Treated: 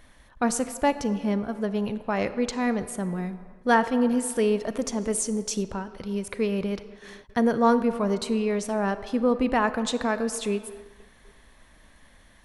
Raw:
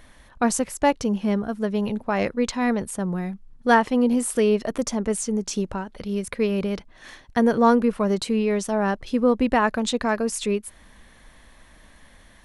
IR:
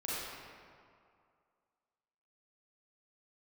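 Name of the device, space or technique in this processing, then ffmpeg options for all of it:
keyed gated reverb: -filter_complex "[0:a]asplit=3[s0][s1][s2];[1:a]atrim=start_sample=2205[s3];[s1][s3]afir=irnorm=-1:irlink=0[s4];[s2]apad=whole_len=548889[s5];[s4][s5]sidechaingate=range=0.0224:threshold=0.00447:ratio=16:detection=peak,volume=0.178[s6];[s0][s6]amix=inputs=2:normalize=0,asettb=1/sr,asplit=3[s7][s8][s9];[s7]atrim=end=5.014[s10];[s8]atrim=start=5.01:end=5.63,asetpts=PTS-STARTPTS,afade=t=in:d=0.004:c=qsin,afade=t=out:st=0.616:d=0.004:c=qsin,highshelf=f=6800:g=8[s11];[s9]atrim=start=5.626[s12];[s10][s11]acrossfade=d=0.004:c1=hsin:c2=qsin[s13];[s13][s12]acrossfade=d=0.004:c1=qsin:c2=hsin,volume=0.631"

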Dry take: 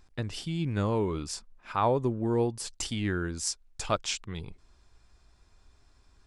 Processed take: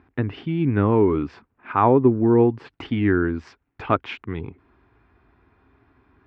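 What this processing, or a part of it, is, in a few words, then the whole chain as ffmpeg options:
bass cabinet: -af "highpass=f=62:w=0.5412,highpass=f=62:w=1.3066,equalizer=f=66:t=q:w=4:g=-9,equalizer=f=180:t=q:w=4:g=-4,equalizer=f=270:t=q:w=4:g=8,equalizer=f=390:t=q:w=4:g=4,equalizer=f=570:t=q:w=4:g=-6,lowpass=f=2300:w=0.5412,lowpass=f=2300:w=1.3066,volume=2.82"

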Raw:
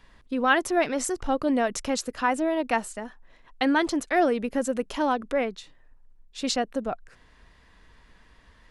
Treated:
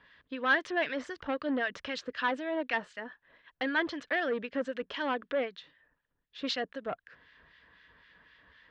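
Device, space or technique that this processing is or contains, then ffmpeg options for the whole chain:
guitar amplifier with harmonic tremolo: -filter_complex "[0:a]acrossover=split=1500[s0][s1];[s0]aeval=exprs='val(0)*(1-0.7/2+0.7/2*cos(2*PI*3.9*n/s))':c=same[s2];[s1]aeval=exprs='val(0)*(1-0.7/2-0.7/2*cos(2*PI*3.9*n/s))':c=same[s3];[s2][s3]amix=inputs=2:normalize=0,asoftclip=type=tanh:threshold=0.0794,highpass=110,equalizer=f=120:t=q:w=4:g=-7,equalizer=f=220:t=q:w=4:g=-8,equalizer=f=360:t=q:w=4:g=-5,equalizer=f=780:t=q:w=4:g=-7,equalizer=f=1700:t=q:w=4:g=8,equalizer=f=3200:t=q:w=4:g=5,lowpass=f=4300:w=0.5412,lowpass=f=4300:w=1.3066"

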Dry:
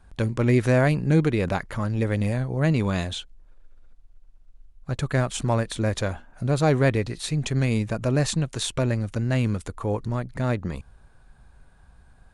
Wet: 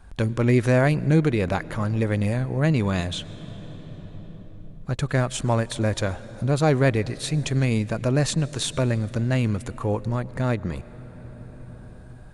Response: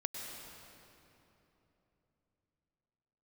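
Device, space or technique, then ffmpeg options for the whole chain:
ducked reverb: -filter_complex "[0:a]asplit=3[s0][s1][s2];[1:a]atrim=start_sample=2205[s3];[s1][s3]afir=irnorm=-1:irlink=0[s4];[s2]apad=whole_len=543846[s5];[s4][s5]sidechaincompress=threshold=0.0126:ratio=4:attack=5.1:release=1010,volume=1[s6];[s0][s6]amix=inputs=2:normalize=0"

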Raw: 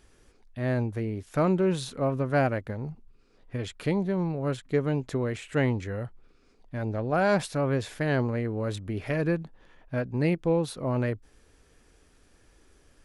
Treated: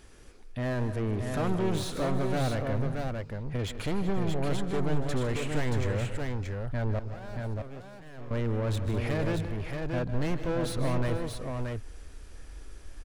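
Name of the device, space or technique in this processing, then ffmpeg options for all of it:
saturation between pre-emphasis and de-emphasis: -filter_complex "[0:a]highshelf=f=2000:g=10,asoftclip=type=tanh:threshold=0.0251,highshelf=f=2000:g=-10,asettb=1/sr,asplit=3[s0][s1][s2];[s0]atrim=end=6.994[s3];[s1]atrim=start=6.99:end=8.31,asetpts=PTS-STARTPTS,afade=t=in:d=0.004:c=qsin,afade=t=out:st=1.316:d=0.004:c=qsin,agate=range=0.0447:threshold=0.0224:ratio=16:detection=peak[s4];[s2]atrim=start=8.306[s5];[s3][s4]acrossfade=d=0.004:c1=hsin:c2=qsin[s6];[s6][s5]acrossfade=d=0.004:c1=qsin:c2=hsin,asubboost=boost=3.5:cutoff=82,aecho=1:1:132|153|199|377|479|628:0.119|0.237|0.168|0.126|0.112|0.596,volume=1.88"

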